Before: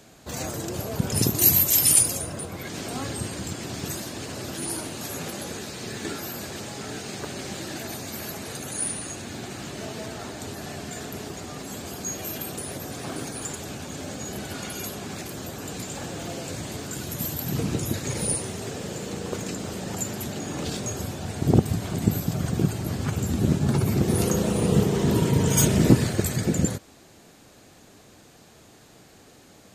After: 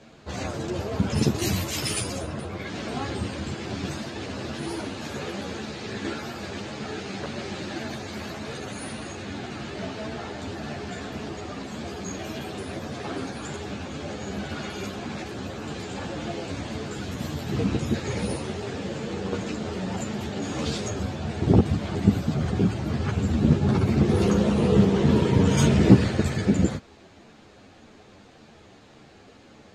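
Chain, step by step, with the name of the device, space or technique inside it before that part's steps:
0:20.42–0:20.89: high-shelf EQ 4,900 Hz +9.5 dB
string-machine ensemble chorus (string-ensemble chorus; low-pass filter 4,000 Hz 12 dB per octave)
level +5 dB

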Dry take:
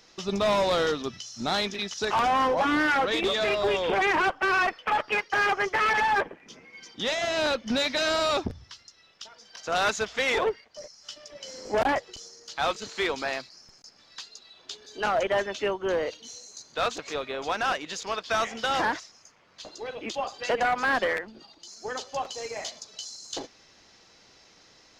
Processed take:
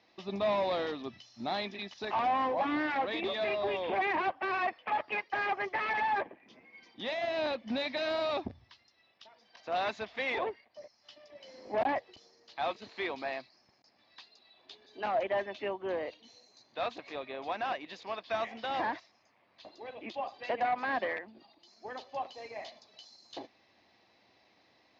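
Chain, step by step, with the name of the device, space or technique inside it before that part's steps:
guitar cabinet (loudspeaker in its box 110–3,800 Hz, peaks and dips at 160 Hz −8 dB, 450 Hz −6 dB, 700 Hz +3 dB, 1,400 Hz −10 dB, 3,100 Hz −6 dB)
level −5.5 dB

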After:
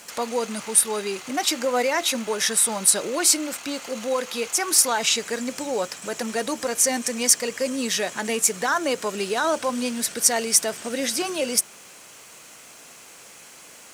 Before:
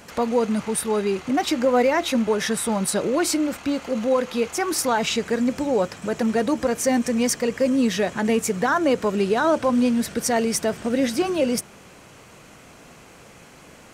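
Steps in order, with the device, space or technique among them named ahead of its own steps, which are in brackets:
low-pass filter 11,000 Hz 12 dB per octave
turntable without a phono preamp (RIAA equalisation recording; white noise bed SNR 35 dB)
level −2 dB

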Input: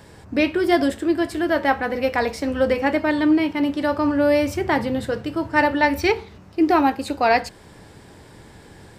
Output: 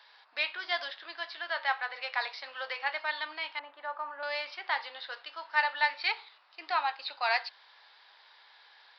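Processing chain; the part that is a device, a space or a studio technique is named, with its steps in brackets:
0:03.59–0:04.23: low-pass filter 1,300 Hz 12 dB per octave
musical greeting card (downsampling to 11,025 Hz; high-pass filter 880 Hz 24 dB per octave; parametric band 3,800 Hz +7 dB 0.57 octaves)
level −7 dB

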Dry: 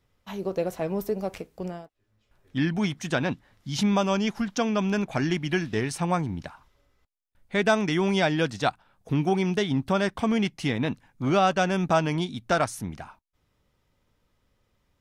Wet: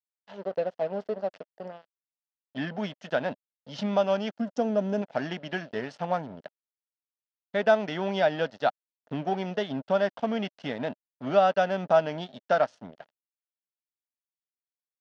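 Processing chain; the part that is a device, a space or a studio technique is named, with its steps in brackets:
0:04.38–0:05.02: octave-band graphic EQ 250/500/1,000/2,000/4,000/8,000 Hz +4/+3/−6/−10/−9/+8 dB
blown loudspeaker (dead-zone distortion −37.5 dBFS; loudspeaker in its box 250–4,300 Hz, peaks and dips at 340 Hz −10 dB, 610 Hz +7 dB, 1,100 Hz −7 dB, 2,300 Hz −10 dB, 3,800 Hz −6 dB)

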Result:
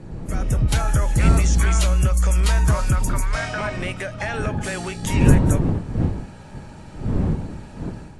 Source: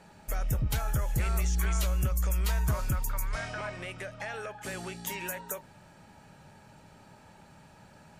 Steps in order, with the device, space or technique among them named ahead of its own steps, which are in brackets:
smartphone video outdoors (wind on the microphone 180 Hz −33 dBFS; automatic gain control gain up to 8.5 dB; level +2 dB; AAC 64 kbit/s 24,000 Hz)

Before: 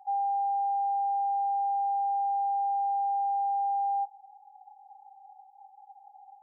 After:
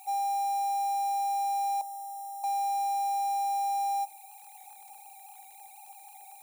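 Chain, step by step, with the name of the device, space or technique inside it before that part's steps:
0:01.81–0:02.44: Butterworth low-pass 740 Hz 96 dB per octave
budget class-D amplifier (gap after every zero crossing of 0.1 ms; spike at every zero crossing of −34.5 dBFS)
level −1 dB

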